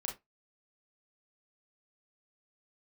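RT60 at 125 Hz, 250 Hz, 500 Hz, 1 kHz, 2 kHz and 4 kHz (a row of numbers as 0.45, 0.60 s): 0.20, 0.20, 0.20, 0.20, 0.15, 0.15 s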